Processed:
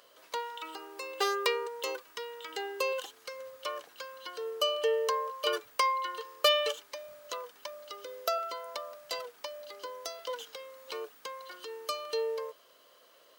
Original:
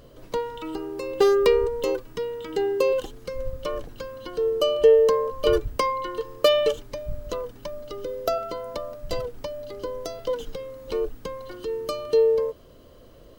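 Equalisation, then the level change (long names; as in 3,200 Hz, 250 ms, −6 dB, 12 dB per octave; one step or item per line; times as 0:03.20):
high-pass filter 1,000 Hz 12 dB per octave
0.0 dB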